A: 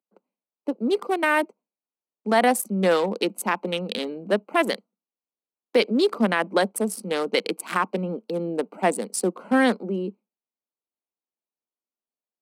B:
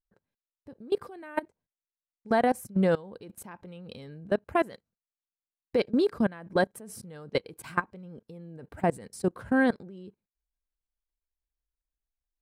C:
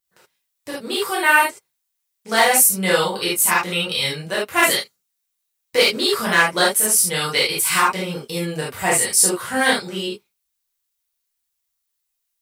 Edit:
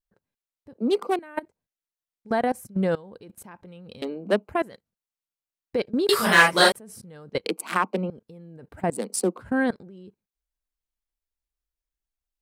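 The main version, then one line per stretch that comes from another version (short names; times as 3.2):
B
0.78–1.19 from A
4.02–4.49 from A
6.09–6.72 from C
7.46–8.1 from A
8.95–9.41 from A, crossfade 0.10 s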